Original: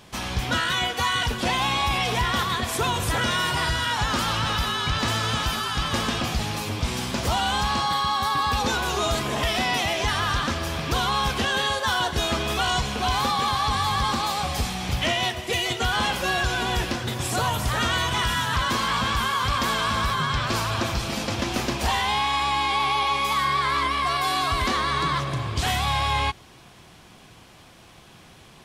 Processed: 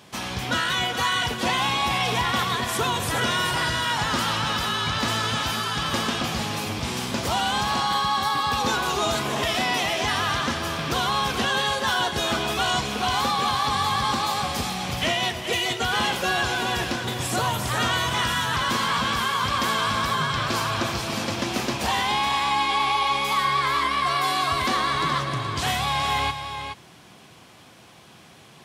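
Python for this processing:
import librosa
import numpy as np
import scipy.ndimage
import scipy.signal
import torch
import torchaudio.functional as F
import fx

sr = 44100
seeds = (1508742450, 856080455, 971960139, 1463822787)

y = scipy.signal.sosfilt(scipy.signal.butter(2, 110.0, 'highpass', fs=sr, output='sos'), x)
y = y + 10.0 ** (-8.5 / 20.0) * np.pad(y, (int(423 * sr / 1000.0), 0))[:len(y)]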